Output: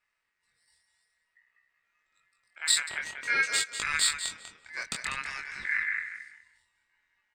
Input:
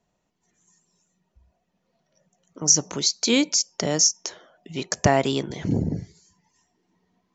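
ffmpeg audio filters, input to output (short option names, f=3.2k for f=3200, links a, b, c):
-filter_complex "[0:a]aeval=exprs='if(lt(val(0),0),0.708*val(0),val(0))':c=same,asettb=1/sr,asplit=3[a][b][c];[a]atrim=end=4.954[d];[b]atrim=start=4.95:end=5.62,asetpts=PTS-STARTPTS,afade=t=in:d=0.004:c=qsin,afade=t=out:st=0.666:d=0.004:c=qsin,acompressor=threshold=-30dB:ratio=2.5[e];[c]atrim=start=5.616[f];[d][e]acrossfade=d=0.004:c1=hsin:c2=qsin[g];[g][f]acrossfade=d=0.004:c1=qsin:c2=hsin,asplit=2[h][i];[i]adelay=195,lowpass=f=4.8k:p=1,volume=-6.5dB,asplit=2[j][k];[k]adelay=195,lowpass=f=4.8k:p=1,volume=0.22,asplit=2[l][m];[m]adelay=195,lowpass=f=4.8k:p=1,volume=0.22[n];[h][j][l][n]amix=inputs=4:normalize=0,flanger=delay=19:depth=6.8:speed=0.53,asplit=3[o][p][q];[o]afade=t=out:st=2.88:d=0.02[r];[p]highshelf=f=2.5k:t=q:w=1.5:g=-14,afade=t=in:st=2.88:d=0.02,afade=t=out:st=3.42:d=0.02[s];[q]afade=t=in:st=3.42:d=0.02[t];[r][s][t]amix=inputs=3:normalize=0,aeval=exprs='val(0)*sin(2*PI*1900*n/s)':c=same"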